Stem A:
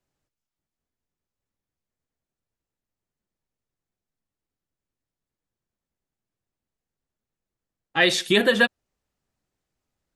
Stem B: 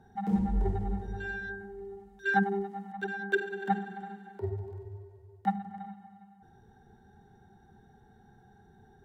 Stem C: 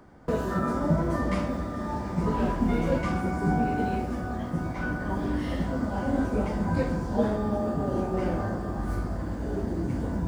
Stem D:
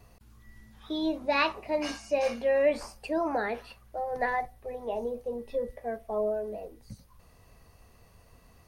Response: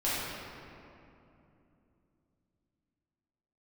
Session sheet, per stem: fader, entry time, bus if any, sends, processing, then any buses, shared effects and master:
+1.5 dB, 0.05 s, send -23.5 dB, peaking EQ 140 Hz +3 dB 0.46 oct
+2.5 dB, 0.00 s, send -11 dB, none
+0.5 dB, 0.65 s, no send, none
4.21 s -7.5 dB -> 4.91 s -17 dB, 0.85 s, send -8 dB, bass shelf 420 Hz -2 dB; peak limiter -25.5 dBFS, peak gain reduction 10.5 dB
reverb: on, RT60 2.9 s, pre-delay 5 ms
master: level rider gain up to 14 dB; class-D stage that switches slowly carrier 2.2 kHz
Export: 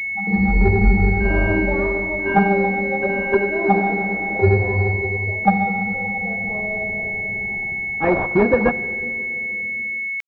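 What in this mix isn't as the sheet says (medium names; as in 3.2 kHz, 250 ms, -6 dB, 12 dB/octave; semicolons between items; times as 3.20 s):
stem A +1.5 dB -> -5.5 dB; stem C: muted; stem D: entry 0.85 s -> 0.40 s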